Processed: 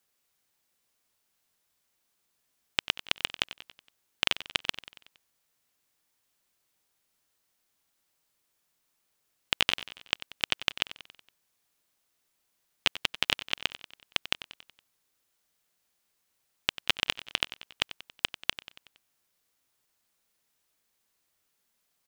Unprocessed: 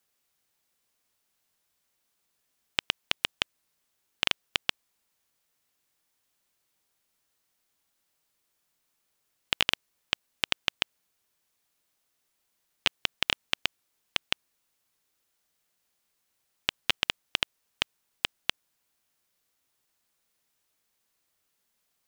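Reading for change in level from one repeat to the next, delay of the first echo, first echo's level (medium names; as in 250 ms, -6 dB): -5.5 dB, 93 ms, -15.0 dB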